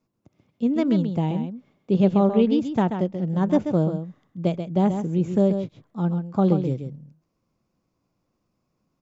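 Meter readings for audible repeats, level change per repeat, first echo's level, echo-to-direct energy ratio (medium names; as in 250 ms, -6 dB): 1, no regular repeats, -8.0 dB, -8.0 dB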